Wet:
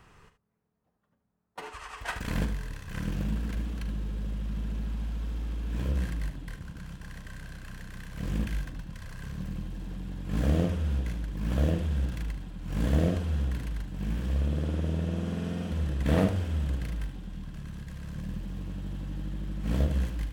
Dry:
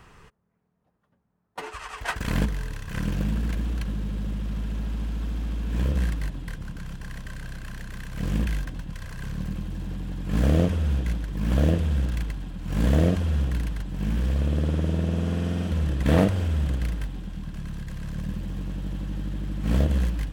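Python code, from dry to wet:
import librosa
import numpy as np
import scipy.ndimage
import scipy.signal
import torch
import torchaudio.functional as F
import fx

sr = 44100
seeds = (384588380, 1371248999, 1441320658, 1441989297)

y = fx.room_early_taps(x, sr, ms=(42, 75), db=(-12.5, -11.0))
y = y * librosa.db_to_amplitude(-5.5)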